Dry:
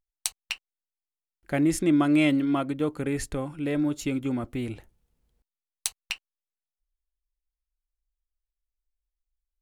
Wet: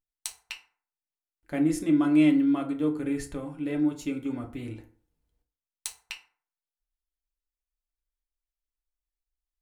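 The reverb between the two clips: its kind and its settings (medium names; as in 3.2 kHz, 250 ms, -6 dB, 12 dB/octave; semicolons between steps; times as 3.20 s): FDN reverb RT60 0.47 s, low-frequency decay 0.95×, high-frequency decay 0.55×, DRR 2.5 dB; trim -7 dB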